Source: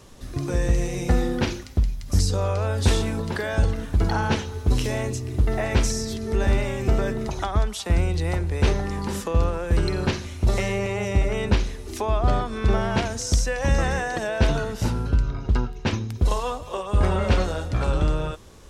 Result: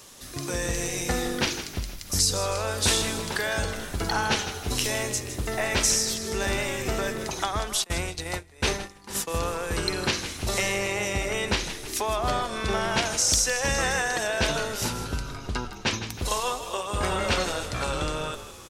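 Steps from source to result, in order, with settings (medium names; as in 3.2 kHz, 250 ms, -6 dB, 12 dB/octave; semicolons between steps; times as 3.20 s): tilt EQ +3 dB/octave; on a send: frequency-shifting echo 159 ms, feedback 52%, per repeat -46 Hz, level -11.5 dB; 7.84–9.34 s: on the sum: gate -28 dBFS, range -21 dB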